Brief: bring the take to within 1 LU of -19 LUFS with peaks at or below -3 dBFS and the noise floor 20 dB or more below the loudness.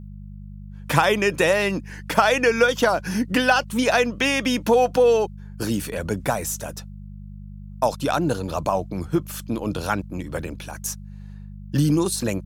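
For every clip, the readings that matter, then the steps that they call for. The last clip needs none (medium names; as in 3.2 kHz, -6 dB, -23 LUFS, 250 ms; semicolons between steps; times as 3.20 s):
hum 50 Hz; highest harmonic 200 Hz; hum level -35 dBFS; loudness -22.0 LUFS; peak level -1.5 dBFS; loudness target -19.0 LUFS
-> de-hum 50 Hz, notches 4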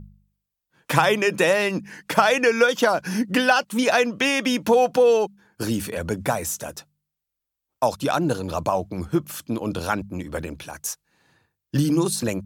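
hum not found; loudness -22.0 LUFS; peak level -1.5 dBFS; loudness target -19.0 LUFS
-> trim +3 dB; peak limiter -3 dBFS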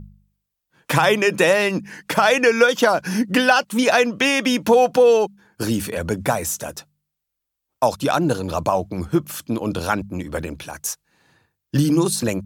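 loudness -19.5 LUFS; peak level -3.0 dBFS; noise floor -81 dBFS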